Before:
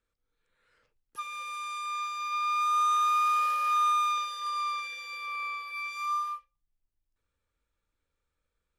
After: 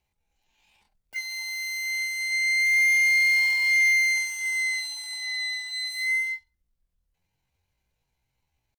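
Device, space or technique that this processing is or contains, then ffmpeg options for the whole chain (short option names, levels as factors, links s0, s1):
chipmunk voice: -af "asetrate=76340,aresample=44100,atempo=0.577676,volume=1.78"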